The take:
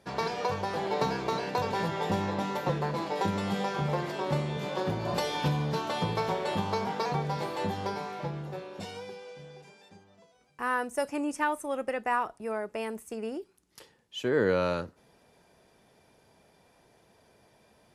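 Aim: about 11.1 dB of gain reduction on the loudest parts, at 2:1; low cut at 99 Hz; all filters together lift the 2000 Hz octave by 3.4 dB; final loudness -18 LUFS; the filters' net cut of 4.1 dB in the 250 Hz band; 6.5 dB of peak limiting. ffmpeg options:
-af "highpass=99,equalizer=f=250:t=o:g=-6,equalizer=f=2k:t=o:g=4.5,acompressor=threshold=-43dB:ratio=2,volume=23.5dB,alimiter=limit=-7dB:level=0:latency=1"

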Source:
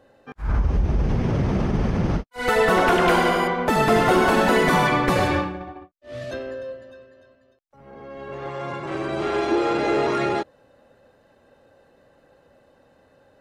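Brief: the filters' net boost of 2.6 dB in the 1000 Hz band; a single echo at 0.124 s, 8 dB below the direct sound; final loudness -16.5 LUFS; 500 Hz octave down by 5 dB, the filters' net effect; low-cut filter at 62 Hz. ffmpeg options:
-af "highpass=62,equalizer=f=500:t=o:g=-8.5,equalizer=f=1k:t=o:g=6,aecho=1:1:124:0.398,volume=4dB"

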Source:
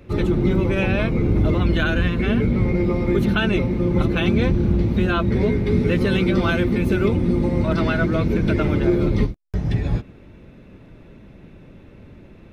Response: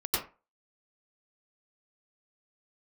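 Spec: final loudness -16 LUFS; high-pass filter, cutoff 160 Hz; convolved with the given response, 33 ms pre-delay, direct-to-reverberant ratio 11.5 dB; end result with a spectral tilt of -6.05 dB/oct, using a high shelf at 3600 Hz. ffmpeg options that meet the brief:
-filter_complex "[0:a]highpass=160,highshelf=f=3.6k:g=-3,asplit=2[a][b];[1:a]atrim=start_sample=2205,adelay=33[c];[b][c]afir=irnorm=-1:irlink=0,volume=-19.5dB[d];[a][d]amix=inputs=2:normalize=0,volume=6dB"

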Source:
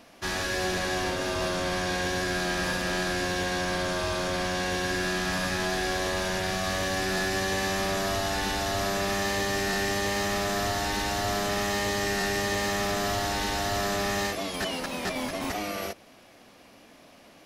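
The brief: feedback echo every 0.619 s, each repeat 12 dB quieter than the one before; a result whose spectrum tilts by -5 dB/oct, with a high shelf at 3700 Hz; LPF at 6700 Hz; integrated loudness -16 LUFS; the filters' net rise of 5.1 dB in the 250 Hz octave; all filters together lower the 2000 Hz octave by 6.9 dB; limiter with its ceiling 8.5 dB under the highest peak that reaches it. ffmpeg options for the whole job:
-af "lowpass=6.7k,equalizer=f=250:t=o:g=7.5,equalizer=f=2k:t=o:g=-8,highshelf=f=3.7k:g=-3,alimiter=level_in=1.5dB:limit=-24dB:level=0:latency=1,volume=-1.5dB,aecho=1:1:619|1238|1857:0.251|0.0628|0.0157,volume=17dB"

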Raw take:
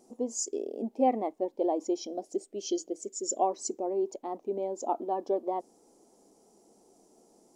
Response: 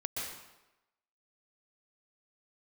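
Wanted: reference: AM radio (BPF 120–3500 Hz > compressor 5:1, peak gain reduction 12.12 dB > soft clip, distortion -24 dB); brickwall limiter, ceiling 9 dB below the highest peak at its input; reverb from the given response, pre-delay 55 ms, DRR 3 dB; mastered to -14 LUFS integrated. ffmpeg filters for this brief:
-filter_complex "[0:a]alimiter=limit=-23.5dB:level=0:latency=1,asplit=2[a][b];[1:a]atrim=start_sample=2205,adelay=55[c];[b][c]afir=irnorm=-1:irlink=0,volume=-6dB[d];[a][d]amix=inputs=2:normalize=0,highpass=120,lowpass=3.5k,acompressor=threshold=-38dB:ratio=5,asoftclip=threshold=-30dB,volume=28.5dB"

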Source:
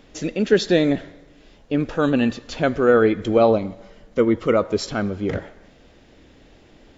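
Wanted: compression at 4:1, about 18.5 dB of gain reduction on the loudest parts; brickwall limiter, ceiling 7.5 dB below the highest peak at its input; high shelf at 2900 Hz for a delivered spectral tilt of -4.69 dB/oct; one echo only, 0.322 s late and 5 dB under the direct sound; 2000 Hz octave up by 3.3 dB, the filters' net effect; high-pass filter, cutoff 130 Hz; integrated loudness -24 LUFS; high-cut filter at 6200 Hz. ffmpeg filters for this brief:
-af "highpass=130,lowpass=6.2k,equalizer=f=2k:t=o:g=6.5,highshelf=f=2.9k:g=-5,acompressor=threshold=-34dB:ratio=4,alimiter=level_in=1.5dB:limit=-24dB:level=0:latency=1,volume=-1.5dB,aecho=1:1:322:0.562,volume=13dB"

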